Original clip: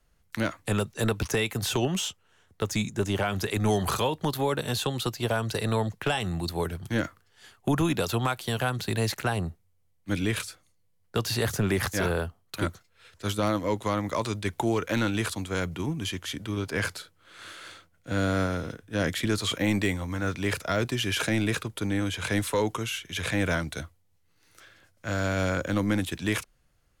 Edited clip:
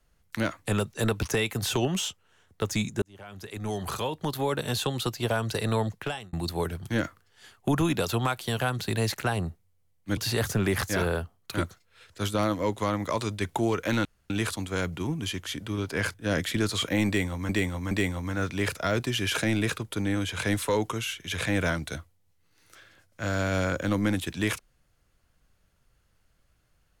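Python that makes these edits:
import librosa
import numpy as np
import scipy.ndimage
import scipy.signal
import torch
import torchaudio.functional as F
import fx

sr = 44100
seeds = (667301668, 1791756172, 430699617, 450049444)

y = fx.edit(x, sr, fx.fade_in_span(start_s=3.02, length_s=1.65),
    fx.fade_out_span(start_s=5.89, length_s=0.44),
    fx.cut(start_s=10.17, length_s=1.04),
    fx.insert_room_tone(at_s=15.09, length_s=0.25),
    fx.cut(start_s=16.93, length_s=1.9),
    fx.repeat(start_s=19.76, length_s=0.42, count=3), tone=tone)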